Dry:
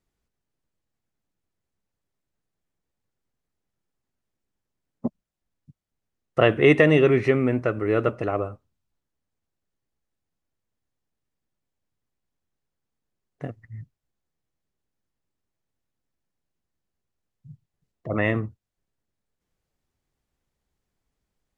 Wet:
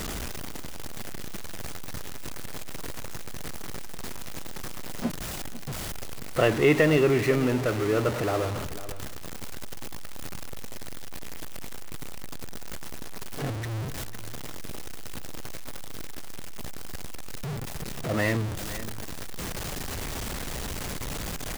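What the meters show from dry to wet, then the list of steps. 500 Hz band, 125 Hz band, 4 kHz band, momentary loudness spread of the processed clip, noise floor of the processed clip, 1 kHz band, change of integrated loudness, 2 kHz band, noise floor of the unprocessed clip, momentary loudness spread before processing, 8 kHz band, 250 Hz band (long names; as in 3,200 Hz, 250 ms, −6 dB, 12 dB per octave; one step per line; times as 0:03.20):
−3.0 dB, −0.5 dB, +4.5 dB, 17 LU, −34 dBFS, 0.0 dB, −9.5 dB, −2.0 dB, −83 dBFS, 21 LU, can't be measured, −2.5 dB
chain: converter with a step at zero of −21 dBFS
on a send: single-tap delay 498 ms −15 dB
on the sum: level −5.5 dB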